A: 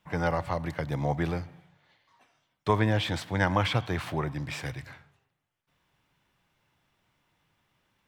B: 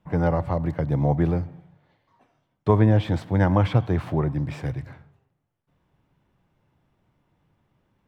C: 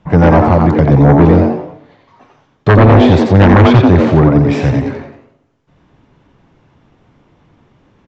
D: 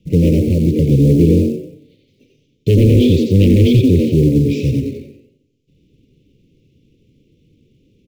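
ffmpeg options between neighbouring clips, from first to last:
-af "tiltshelf=f=1.1k:g=9"
-filter_complex "[0:a]asplit=5[a][b][c][d][e];[b]adelay=88,afreqshift=140,volume=-5dB[f];[c]adelay=176,afreqshift=280,volume=-14.1dB[g];[d]adelay=264,afreqshift=420,volume=-23.2dB[h];[e]adelay=352,afreqshift=560,volume=-32.4dB[i];[a][f][g][h][i]amix=inputs=5:normalize=0,aresample=16000,aeval=exprs='0.596*sin(PI/2*2.82*val(0)/0.596)':c=same,aresample=44100,volume=3dB"
-filter_complex "[0:a]asplit=2[a][b];[b]acrusher=bits=5:mode=log:mix=0:aa=0.000001,volume=-3dB[c];[a][c]amix=inputs=2:normalize=0,asuperstop=centerf=1100:order=12:qfactor=0.57,volume=-8dB"

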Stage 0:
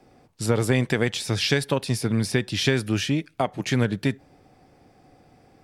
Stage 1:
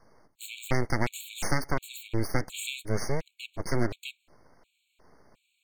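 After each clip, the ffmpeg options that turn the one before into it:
-af "aeval=exprs='abs(val(0))':c=same,afftfilt=real='re*gt(sin(2*PI*1.4*pts/sr)*(1-2*mod(floor(b*sr/1024/2200),2)),0)':imag='im*gt(sin(2*PI*1.4*pts/sr)*(1-2*mod(floor(b*sr/1024/2200),2)),0)':win_size=1024:overlap=0.75,volume=-2dB"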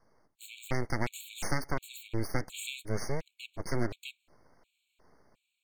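-af "dynaudnorm=f=260:g=5:m=4dB,volume=-8dB"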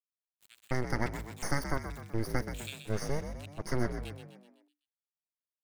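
-filter_complex "[0:a]aeval=exprs='sgn(val(0))*max(abs(val(0))-0.0075,0)':c=same,asplit=2[a][b];[b]asplit=6[c][d][e][f][g][h];[c]adelay=126,afreqshift=49,volume=-9dB[i];[d]adelay=252,afreqshift=98,volume=-15.2dB[j];[e]adelay=378,afreqshift=147,volume=-21.4dB[k];[f]adelay=504,afreqshift=196,volume=-27.6dB[l];[g]adelay=630,afreqshift=245,volume=-33.8dB[m];[h]adelay=756,afreqshift=294,volume=-40dB[n];[i][j][k][l][m][n]amix=inputs=6:normalize=0[o];[a][o]amix=inputs=2:normalize=0"

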